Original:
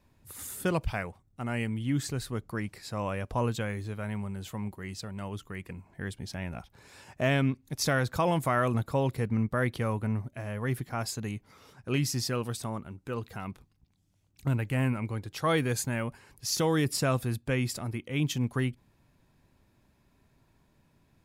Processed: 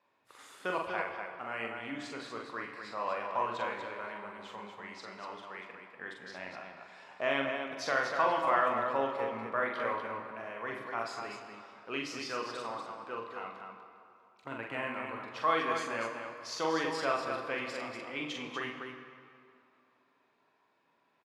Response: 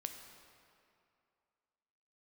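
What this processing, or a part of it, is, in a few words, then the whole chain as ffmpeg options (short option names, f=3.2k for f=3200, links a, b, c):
station announcement: -filter_complex "[0:a]asettb=1/sr,asplit=3[a][b][c];[a]atrim=end=5.184[d];[b]atrim=start=5.18:end=5.93,asetpts=PTS-STARTPTS,afade=t=in:d=0.004:c=qsin,afade=t=out:st=0.746:d=0.004:c=qsin,highpass=f=170:p=1[e];[c]atrim=start=5.926[f];[d][e]acrossfade=d=0.004:c1=hsin:c2=qsin[g];[g][f]acrossfade=d=0.004:c1=qsin:c2=hsin,highpass=500,lowpass=3.5k,equalizer=f=1.1k:t=o:w=0.5:g=4.5,aecho=1:1:43.73|242:0.631|0.501[h];[1:a]atrim=start_sample=2205[i];[h][i]afir=irnorm=-1:irlink=0"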